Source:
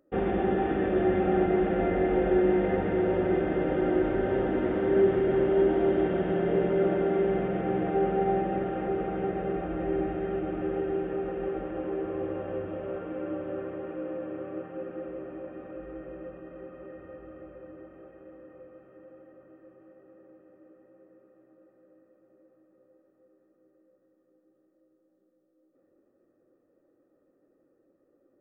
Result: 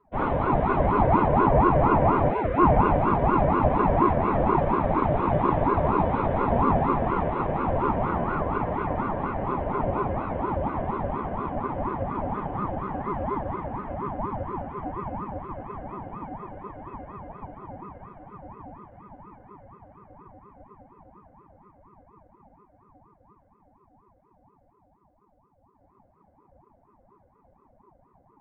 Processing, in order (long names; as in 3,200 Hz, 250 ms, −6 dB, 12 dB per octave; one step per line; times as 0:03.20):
high-shelf EQ 2,300 Hz −10 dB
feedback delay network reverb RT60 1.1 s, low-frequency decay 0.95×, high-frequency decay 0.4×, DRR −7 dB
time-frequency box erased 0:02.30–0:02.58, 320–760 Hz
ring modulator whose carrier an LFO sweeps 470 Hz, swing 55%, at 4.2 Hz